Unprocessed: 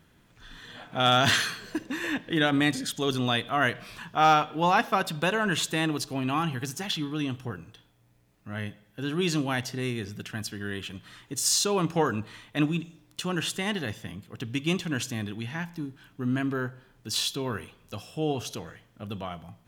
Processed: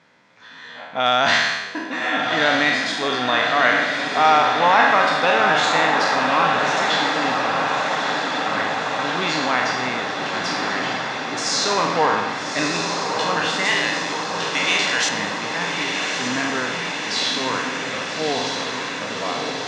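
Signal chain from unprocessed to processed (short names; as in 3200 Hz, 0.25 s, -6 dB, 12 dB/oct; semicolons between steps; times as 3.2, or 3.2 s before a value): spectral trails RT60 0.96 s; 13.65–15.09 tilt +4.5 dB/oct; in parallel at -2.5 dB: limiter -16.5 dBFS, peak gain reduction 10 dB; on the sum: requantised 10-bit, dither none; speaker cabinet 280–5700 Hz, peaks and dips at 350 Hz -9 dB, 550 Hz +4 dB, 960 Hz +5 dB, 2100 Hz +6 dB, 3000 Hz -5 dB; on a send: diffused feedback echo 1.234 s, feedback 76%, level -4.5 dB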